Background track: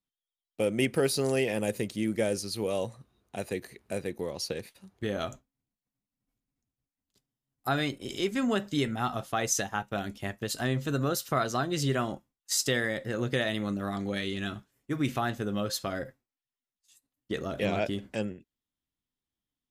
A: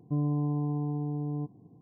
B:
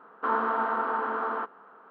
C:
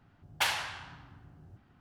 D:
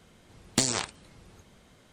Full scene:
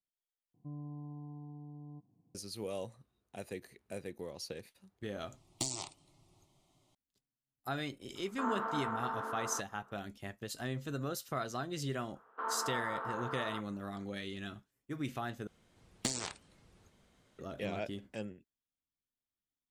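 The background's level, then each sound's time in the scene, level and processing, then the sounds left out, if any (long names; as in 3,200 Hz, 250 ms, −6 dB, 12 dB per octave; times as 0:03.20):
background track −9.5 dB
0:00.54: overwrite with A −16 dB + parametric band 410 Hz −9 dB 0.31 octaves
0:05.03: mix in D −10 dB + phaser with its sweep stopped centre 320 Hz, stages 8
0:08.15: mix in B −10 dB
0:12.15: mix in B −11 dB + high-pass filter 370 Hz
0:15.47: overwrite with D −10.5 dB
not used: C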